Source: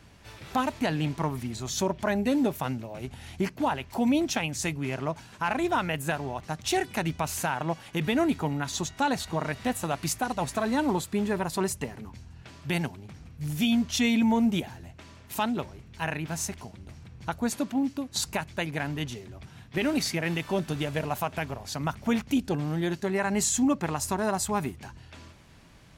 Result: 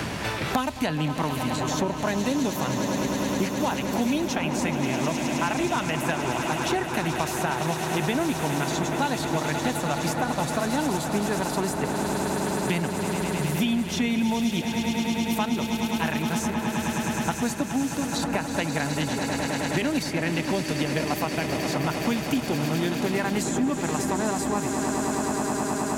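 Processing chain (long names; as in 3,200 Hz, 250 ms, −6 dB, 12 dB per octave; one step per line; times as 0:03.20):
on a send: echo that builds up and dies away 105 ms, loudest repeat 8, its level −13 dB
on the sum: multiband upward and downward compressor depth 100%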